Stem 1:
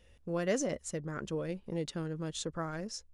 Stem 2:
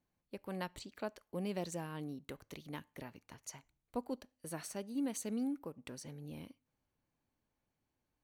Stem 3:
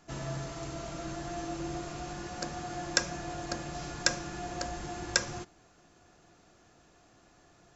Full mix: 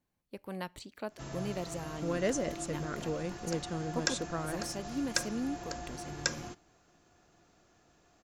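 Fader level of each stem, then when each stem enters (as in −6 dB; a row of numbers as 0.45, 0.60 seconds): 0.0, +1.5, −4.5 decibels; 1.75, 0.00, 1.10 seconds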